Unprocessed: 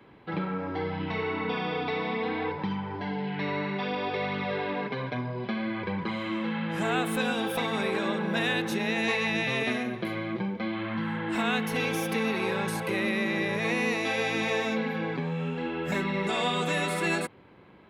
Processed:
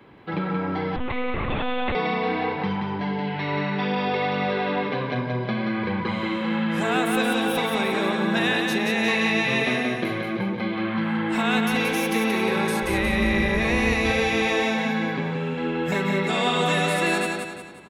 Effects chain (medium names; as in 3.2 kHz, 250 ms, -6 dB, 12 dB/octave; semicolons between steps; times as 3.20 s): 12.82–14.20 s: octave divider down 2 oct, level -2 dB; feedback delay 178 ms, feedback 42%, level -4.5 dB; 0.96–1.95 s: monotone LPC vocoder at 8 kHz 250 Hz; trim +4 dB